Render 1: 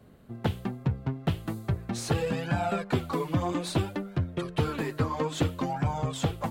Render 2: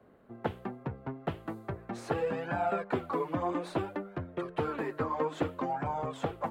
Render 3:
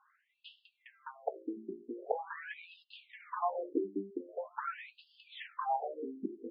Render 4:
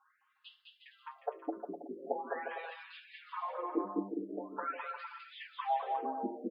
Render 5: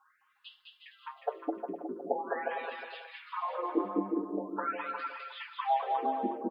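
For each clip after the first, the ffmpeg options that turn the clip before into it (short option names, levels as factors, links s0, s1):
-filter_complex "[0:a]acrossover=split=280 2100:gain=0.224 1 0.158[s0][s1][s2];[s0][s1][s2]amix=inputs=3:normalize=0"
-af "afftfilt=real='re*between(b*sr/1024,280*pow(3800/280,0.5+0.5*sin(2*PI*0.44*pts/sr))/1.41,280*pow(3800/280,0.5+0.5*sin(2*PI*0.44*pts/sr))*1.41)':imag='im*between(b*sr/1024,280*pow(3800/280,0.5+0.5*sin(2*PI*0.44*pts/sr))/1.41,280*pow(3800/280,0.5+0.5*sin(2*PI*0.44*pts/sr))*1.41)':win_size=1024:overlap=0.75,volume=1.26"
-filter_complex "[0:a]asplit=2[s0][s1];[s1]aecho=0:1:210|357|459.9|531.9|582.4:0.631|0.398|0.251|0.158|0.1[s2];[s0][s2]amix=inputs=2:normalize=0,asplit=2[s3][s4];[s4]adelay=5.8,afreqshift=-0.32[s5];[s3][s5]amix=inputs=2:normalize=1,volume=1.19"
-af "aecho=1:1:363:0.355,volume=1.58"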